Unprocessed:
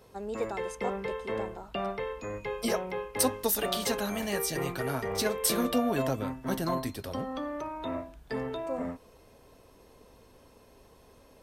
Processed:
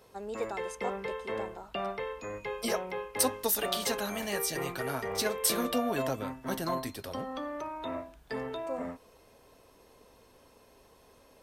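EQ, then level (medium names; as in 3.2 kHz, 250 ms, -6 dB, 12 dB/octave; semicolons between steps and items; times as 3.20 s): bass shelf 320 Hz -6.5 dB; 0.0 dB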